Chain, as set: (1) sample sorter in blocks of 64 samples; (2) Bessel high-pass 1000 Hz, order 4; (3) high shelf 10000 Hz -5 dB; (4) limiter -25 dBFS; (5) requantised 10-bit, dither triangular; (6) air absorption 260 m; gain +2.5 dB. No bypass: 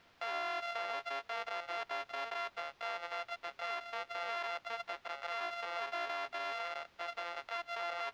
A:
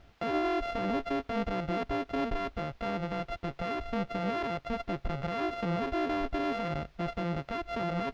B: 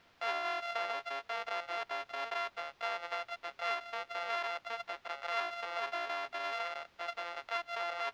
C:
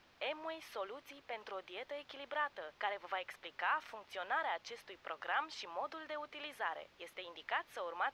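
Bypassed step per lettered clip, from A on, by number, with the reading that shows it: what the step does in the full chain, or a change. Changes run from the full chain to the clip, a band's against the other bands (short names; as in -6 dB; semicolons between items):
2, 250 Hz band +27.0 dB; 4, crest factor change +5.0 dB; 1, crest factor change +6.0 dB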